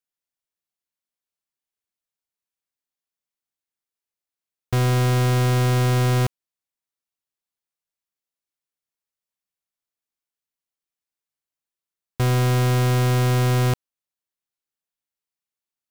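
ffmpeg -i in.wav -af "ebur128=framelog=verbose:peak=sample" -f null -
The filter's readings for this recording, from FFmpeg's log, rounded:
Integrated loudness:
  I:         -20.4 LUFS
  Threshold: -30.5 LUFS
Loudness range:
  LRA:         7.5 LU
  Threshold: -43.9 LUFS
  LRA low:   -29.9 LUFS
  LRA high:  -22.4 LUFS
Sample peak:
  Peak:      -18.4 dBFS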